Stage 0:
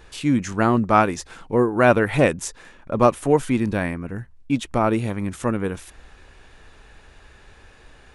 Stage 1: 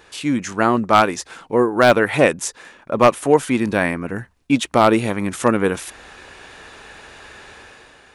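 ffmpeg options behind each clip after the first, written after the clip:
ffmpeg -i in.wav -af "highpass=frequency=320:poles=1,dynaudnorm=framelen=110:gausssize=11:maxgain=8.5dB,aeval=exprs='0.562*(abs(mod(val(0)/0.562+3,4)-2)-1)':channel_layout=same,volume=3.5dB" out.wav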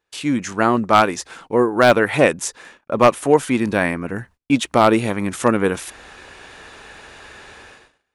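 ffmpeg -i in.wav -af "agate=range=-28dB:threshold=-44dB:ratio=16:detection=peak" out.wav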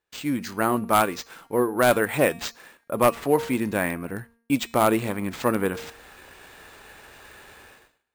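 ffmpeg -i in.wav -af "bandreject=frequency=231.3:width_type=h:width=4,bandreject=frequency=462.6:width_type=h:width=4,bandreject=frequency=693.9:width_type=h:width=4,bandreject=frequency=925.2:width_type=h:width=4,bandreject=frequency=1156.5:width_type=h:width=4,bandreject=frequency=1387.8:width_type=h:width=4,bandreject=frequency=1619.1:width_type=h:width=4,bandreject=frequency=1850.4:width_type=h:width=4,bandreject=frequency=2081.7:width_type=h:width=4,bandreject=frequency=2313:width_type=h:width=4,bandreject=frequency=2544.3:width_type=h:width=4,bandreject=frequency=2775.6:width_type=h:width=4,bandreject=frequency=3006.9:width_type=h:width=4,bandreject=frequency=3238.2:width_type=h:width=4,bandreject=frequency=3469.5:width_type=h:width=4,bandreject=frequency=3700.8:width_type=h:width=4,bandreject=frequency=3932.1:width_type=h:width=4,bandreject=frequency=4163.4:width_type=h:width=4,bandreject=frequency=4394.7:width_type=h:width=4,bandreject=frequency=4626:width_type=h:width=4,bandreject=frequency=4857.3:width_type=h:width=4,bandreject=frequency=5088.6:width_type=h:width=4,bandreject=frequency=5319.9:width_type=h:width=4,bandreject=frequency=5551.2:width_type=h:width=4,bandreject=frequency=5782.5:width_type=h:width=4,bandreject=frequency=6013.8:width_type=h:width=4,bandreject=frequency=6245.1:width_type=h:width=4,bandreject=frequency=6476.4:width_type=h:width=4,bandreject=frequency=6707.7:width_type=h:width=4,bandreject=frequency=6939:width_type=h:width=4,acrusher=samples=4:mix=1:aa=0.000001,volume=-6dB" -ar 48000 -c:a aac -b:a 128k out.aac

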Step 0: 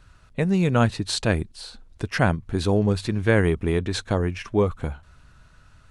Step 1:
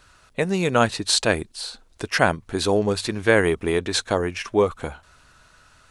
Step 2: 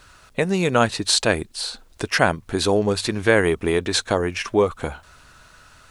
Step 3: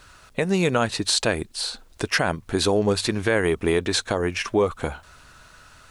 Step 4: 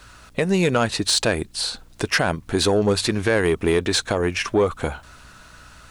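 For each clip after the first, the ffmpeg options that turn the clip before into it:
ffmpeg -i in.wav -af "bass=frequency=250:gain=-12,treble=frequency=4000:gain=4,volume=4.5dB" out.wav
ffmpeg -i in.wav -filter_complex "[0:a]asplit=2[link_01][link_02];[link_02]acompressor=threshold=-27dB:ratio=6,volume=-1dB[link_03];[link_01][link_03]amix=inputs=2:normalize=0,acrusher=bits=10:mix=0:aa=0.000001,volume=-1dB" out.wav
ffmpeg -i in.wav -af "alimiter=limit=-10dB:level=0:latency=1:release=109" out.wav
ffmpeg -i in.wav -af "asoftclip=type=tanh:threshold=-11.5dB,aeval=exprs='val(0)+0.00178*(sin(2*PI*60*n/s)+sin(2*PI*2*60*n/s)/2+sin(2*PI*3*60*n/s)/3+sin(2*PI*4*60*n/s)/4+sin(2*PI*5*60*n/s)/5)':channel_layout=same,volume=3dB" out.wav

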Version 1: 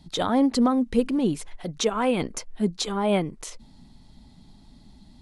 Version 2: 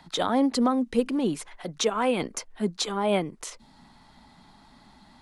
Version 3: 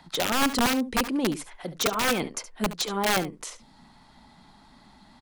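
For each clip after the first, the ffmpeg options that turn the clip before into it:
ffmpeg -i in.wav -filter_complex "[0:a]acrossover=split=200|1100|1500[link_01][link_02][link_03][link_04];[link_03]acompressor=mode=upward:threshold=-43dB:ratio=2.5[link_05];[link_01][link_02][link_05][link_04]amix=inputs=4:normalize=0,lowshelf=frequency=150:gain=-11" out.wav
ffmpeg -i in.wav -af "aeval=exprs='(mod(7.08*val(0)+1,2)-1)/7.08':channel_layout=same,aecho=1:1:71:0.2" out.wav

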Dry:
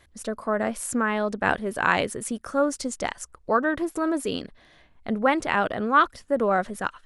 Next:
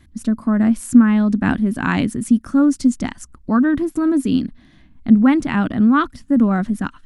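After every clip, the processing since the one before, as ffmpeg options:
ffmpeg -i in.wav -af "lowshelf=frequency=350:width_type=q:width=3:gain=10.5" out.wav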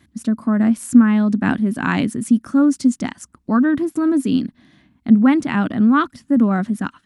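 ffmpeg -i in.wav -af "highpass=120" out.wav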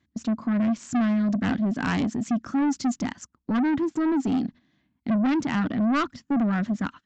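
ffmpeg -i in.wav -af "agate=range=-14dB:threshold=-36dB:ratio=16:detection=peak,aresample=16000,asoftclip=type=tanh:threshold=-18.5dB,aresample=44100,volume=-1.5dB" out.wav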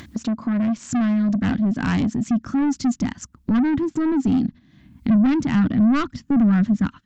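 ffmpeg -i in.wav -af "asubboost=boost=3.5:cutoff=250,acompressor=mode=upward:threshold=-21dB:ratio=2.5,volume=1dB" out.wav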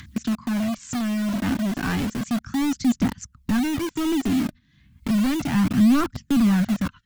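ffmpeg -i in.wav -filter_complex "[0:a]acrossover=split=210|1100|1200[link_01][link_02][link_03][link_04];[link_02]acrusher=bits=4:mix=0:aa=0.000001[link_05];[link_01][link_05][link_03][link_04]amix=inputs=4:normalize=0,aphaser=in_gain=1:out_gain=1:delay=3.4:decay=0.38:speed=0.33:type=triangular,volume=-2.5dB" out.wav

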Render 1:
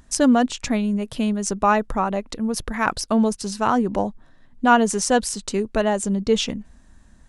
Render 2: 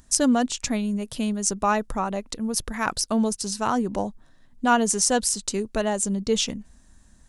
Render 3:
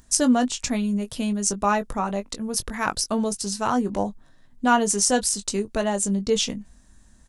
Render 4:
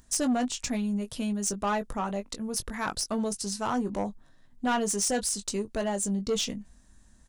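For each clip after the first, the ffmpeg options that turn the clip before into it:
ffmpeg -i in.wav -af "bass=frequency=250:gain=1,treble=frequency=4000:gain=9,volume=-4.5dB" out.wav
ffmpeg -i in.wav -filter_complex "[0:a]asplit=2[link_01][link_02];[link_02]adelay=20,volume=-9dB[link_03];[link_01][link_03]amix=inputs=2:normalize=0" out.wav
ffmpeg -i in.wav -af "asoftclip=type=tanh:threshold=-17dB,volume=-4dB" out.wav

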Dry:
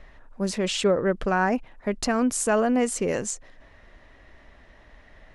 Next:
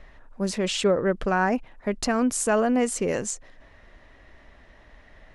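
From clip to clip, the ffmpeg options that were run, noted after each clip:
ffmpeg -i in.wav -af anull out.wav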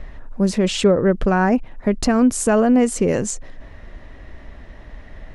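ffmpeg -i in.wav -filter_complex "[0:a]lowshelf=frequency=410:gain=9.5,asplit=2[link_01][link_02];[link_02]acompressor=threshold=-27dB:ratio=6,volume=-0.5dB[link_03];[link_01][link_03]amix=inputs=2:normalize=0" out.wav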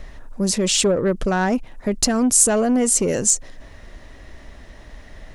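ffmpeg -i in.wav -af "acontrast=81,bass=frequency=250:gain=-2,treble=frequency=4000:gain=13,volume=-8dB" out.wav

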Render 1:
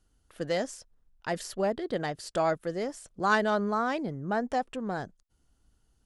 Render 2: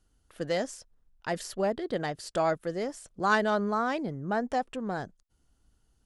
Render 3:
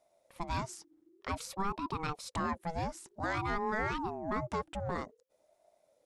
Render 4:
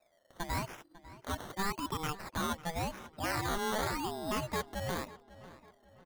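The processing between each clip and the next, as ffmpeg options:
ffmpeg -i in.wav -af anull out.wav
ffmpeg -i in.wav -af "alimiter=limit=-22.5dB:level=0:latency=1:release=120,aeval=exprs='val(0)*sin(2*PI*480*n/s+480*0.35/0.53*sin(2*PI*0.53*n/s))':channel_layout=same" out.wav
ffmpeg -i in.wav -filter_complex "[0:a]acrusher=samples=14:mix=1:aa=0.000001:lfo=1:lforange=8.4:lforate=0.89,asplit=2[link_01][link_02];[link_02]adelay=548,lowpass=frequency=3800:poles=1,volume=-17dB,asplit=2[link_03][link_04];[link_04]adelay=548,lowpass=frequency=3800:poles=1,volume=0.43,asplit=2[link_05][link_06];[link_06]adelay=548,lowpass=frequency=3800:poles=1,volume=0.43,asplit=2[link_07][link_08];[link_08]adelay=548,lowpass=frequency=3800:poles=1,volume=0.43[link_09];[link_01][link_03][link_05][link_07][link_09]amix=inputs=5:normalize=0" out.wav

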